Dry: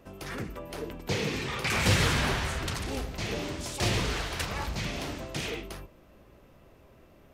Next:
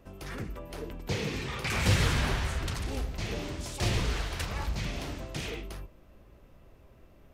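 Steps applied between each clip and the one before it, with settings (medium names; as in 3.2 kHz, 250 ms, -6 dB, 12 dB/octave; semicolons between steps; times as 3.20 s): bass shelf 80 Hz +10.5 dB; trim -3.5 dB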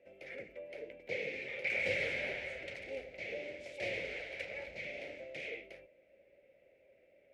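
two resonant band-passes 1.1 kHz, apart 2 oct; trim +4 dB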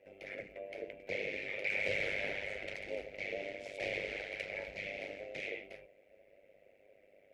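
AM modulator 100 Hz, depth 70%; in parallel at -1 dB: peak limiter -34.5 dBFS, peak gain reduction 11 dB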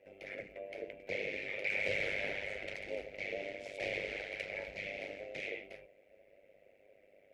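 no audible change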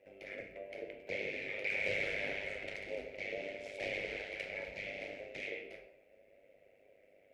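reverberation, pre-delay 21 ms, DRR 6 dB; trim -1.5 dB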